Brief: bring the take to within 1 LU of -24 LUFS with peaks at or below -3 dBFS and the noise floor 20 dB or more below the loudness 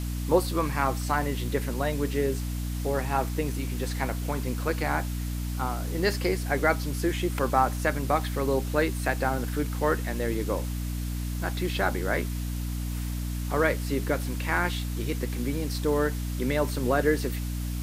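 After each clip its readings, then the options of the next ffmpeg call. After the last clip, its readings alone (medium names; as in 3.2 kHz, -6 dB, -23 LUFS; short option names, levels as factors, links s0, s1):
hum 60 Hz; highest harmonic 300 Hz; hum level -28 dBFS; noise floor -31 dBFS; noise floor target -48 dBFS; loudness -28.0 LUFS; peak level -8.5 dBFS; loudness target -24.0 LUFS
-> -af "bandreject=f=60:t=h:w=4,bandreject=f=120:t=h:w=4,bandreject=f=180:t=h:w=4,bandreject=f=240:t=h:w=4,bandreject=f=300:t=h:w=4"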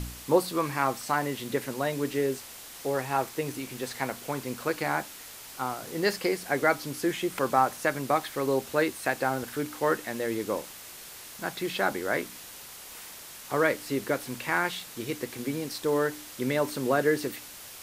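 hum not found; noise floor -45 dBFS; noise floor target -50 dBFS
-> -af "afftdn=nr=6:nf=-45"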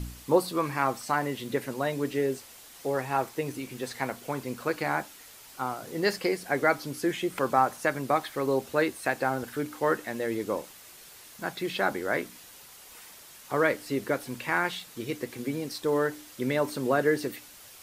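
noise floor -50 dBFS; loudness -29.5 LUFS; peak level -9.0 dBFS; loudness target -24.0 LUFS
-> -af "volume=1.88"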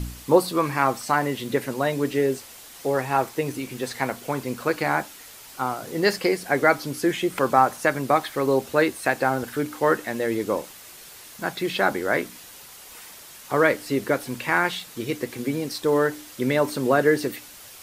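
loudness -24.0 LUFS; peak level -3.5 dBFS; noise floor -45 dBFS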